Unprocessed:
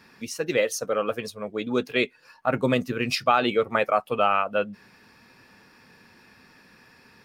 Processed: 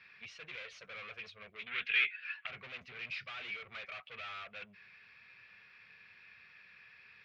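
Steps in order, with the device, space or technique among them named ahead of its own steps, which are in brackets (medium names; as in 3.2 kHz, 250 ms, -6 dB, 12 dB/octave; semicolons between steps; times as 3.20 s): scooped metal amplifier (valve stage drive 37 dB, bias 0.3; cabinet simulation 91–3500 Hz, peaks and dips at 380 Hz +5 dB, 880 Hz -9 dB, 2.3 kHz +8 dB; amplifier tone stack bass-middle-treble 10-0-10); 1.66–2.47 s: high-order bell 2.2 kHz +13.5 dB; trim +1 dB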